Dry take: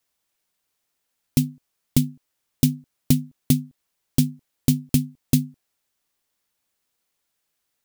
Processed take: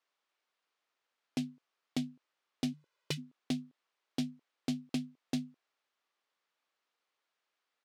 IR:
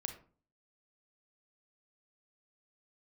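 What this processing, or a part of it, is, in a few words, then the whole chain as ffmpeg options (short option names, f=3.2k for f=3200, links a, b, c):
intercom: -filter_complex "[0:a]asplit=3[a][b][c];[a]afade=t=out:st=2.72:d=0.02[d];[b]aecho=1:1:2:0.97,afade=t=in:st=2.72:d=0.02,afade=t=out:st=3.17:d=0.02[e];[c]afade=t=in:st=3.17:d=0.02[f];[d][e][f]amix=inputs=3:normalize=0,highpass=380,lowpass=3.7k,equalizer=f=1.2k:t=o:w=0.46:g=4,asoftclip=type=tanh:threshold=-23dB,volume=-2.5dB"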